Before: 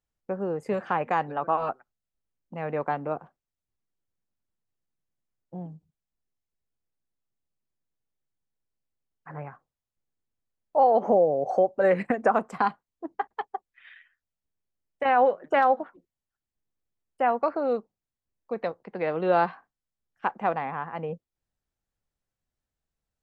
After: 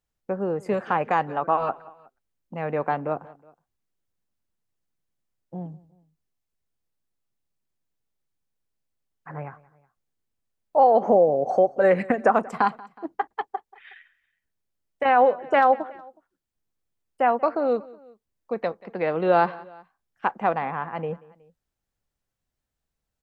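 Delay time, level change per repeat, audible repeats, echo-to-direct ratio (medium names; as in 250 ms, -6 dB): 184 ms, -5.0 dB, 2, -21.0 dB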